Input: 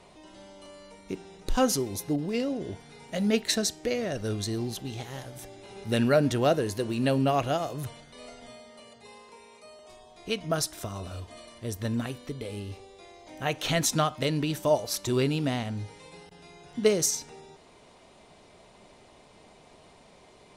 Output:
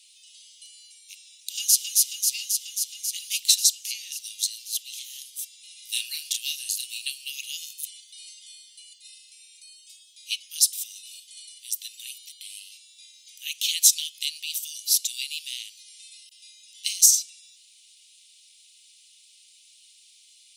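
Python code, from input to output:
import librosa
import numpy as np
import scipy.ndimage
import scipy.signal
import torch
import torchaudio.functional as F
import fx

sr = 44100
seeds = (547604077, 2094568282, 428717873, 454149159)

y = fx.echo_throw(x, sr, start_s=1.33, length_s=0.51, ms=270, feedback_pct=80, wet_db=-3.0)
y = fx.doubler(y, sr, ms=32.0, db=-3.0, at=(5.76, 7.02))
y = scipy.signal.sosfilt(scipy.signal.butter(8, 2700.0, 'highpass', fs=sr, output='sos'), y)
y = fx.high_shelf(y, sr, hz=6600.0, db=11.5)
y = y * librosa.db_to_amplitude(5.0)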